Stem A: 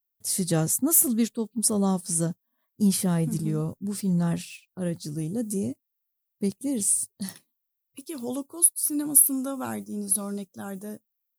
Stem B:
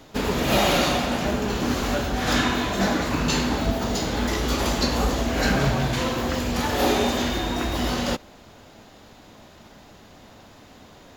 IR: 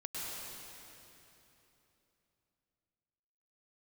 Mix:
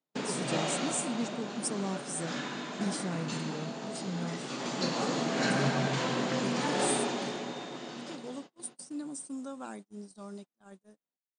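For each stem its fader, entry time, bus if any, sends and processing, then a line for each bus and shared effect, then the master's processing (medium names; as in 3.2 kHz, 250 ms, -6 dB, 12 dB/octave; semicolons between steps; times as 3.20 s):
-8.5 dB, 0.00 s, no send, peaking EQ 110 Hz -7 dB 1.7 oct
4.35 s -8.5 dB -> 5.04 s 0 dB -> 6.75 s 0 dB -> 7.52 s -12 dB, 0.00 s, send -12.5 dB, auto duck -10 dB, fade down 0.95 s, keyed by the first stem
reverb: on, RT60 3.2 s, pre-delay 96 ms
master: FFT band-pass 120–9300 Hz; gate -44 dBFS, range -35 dB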